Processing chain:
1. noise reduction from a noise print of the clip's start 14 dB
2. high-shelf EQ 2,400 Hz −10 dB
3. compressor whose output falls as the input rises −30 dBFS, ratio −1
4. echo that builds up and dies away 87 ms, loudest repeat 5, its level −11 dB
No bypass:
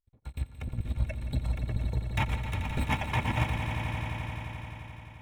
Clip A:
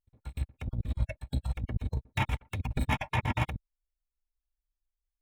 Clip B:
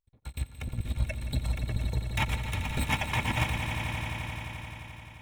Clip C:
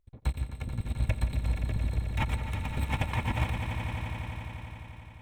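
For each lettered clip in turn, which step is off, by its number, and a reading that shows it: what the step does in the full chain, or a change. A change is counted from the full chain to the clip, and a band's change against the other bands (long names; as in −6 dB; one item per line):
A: 4, echo-to-direct ratio −1.5 dB to none audible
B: 2, 8 kHz band +8.0 dB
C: 1, 8 kHz band +2.0 dB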